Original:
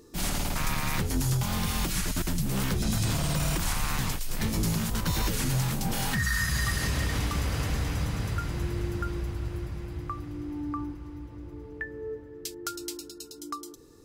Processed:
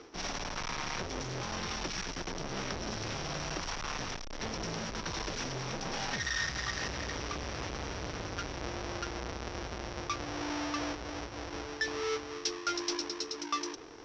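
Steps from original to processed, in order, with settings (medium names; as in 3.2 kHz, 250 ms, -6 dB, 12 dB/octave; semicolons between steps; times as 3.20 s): square wave that keeps the level; reverse; compression 6:1, threshold -33 dBFS, peak gain reduction 11.5 dB; reverse; resonant low-pass 5.7 kHz, resonance Q 12; three-band isolator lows -12 dB, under 320 Hz, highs -24 dB, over 4.1 kHz; trim +3 dB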